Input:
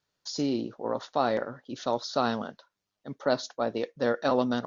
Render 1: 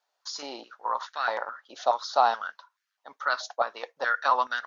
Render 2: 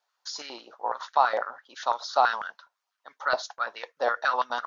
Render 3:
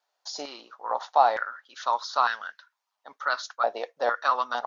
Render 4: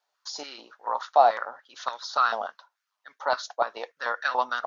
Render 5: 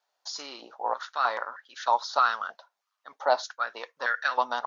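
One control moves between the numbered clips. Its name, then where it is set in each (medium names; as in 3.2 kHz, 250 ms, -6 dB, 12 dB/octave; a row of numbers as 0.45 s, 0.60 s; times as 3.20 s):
step-sequenced high-pass, rate: 4.7 Hz, 12 Hz, 2.2 Hz, 6.9 Hz, 3.2 Hz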